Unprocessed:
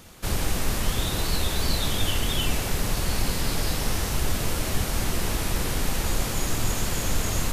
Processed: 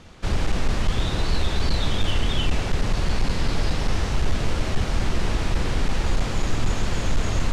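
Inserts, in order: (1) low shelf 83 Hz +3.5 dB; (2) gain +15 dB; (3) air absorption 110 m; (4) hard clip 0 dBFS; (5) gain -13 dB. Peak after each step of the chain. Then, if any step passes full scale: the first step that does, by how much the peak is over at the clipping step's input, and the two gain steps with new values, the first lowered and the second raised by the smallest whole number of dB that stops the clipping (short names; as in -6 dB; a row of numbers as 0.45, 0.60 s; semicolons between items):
-9.0, +6.0, +5.5, 0.0, -13.0 dBFS; step 2, 5.5 dB; step 2 +9 dB, step 5 -7 dB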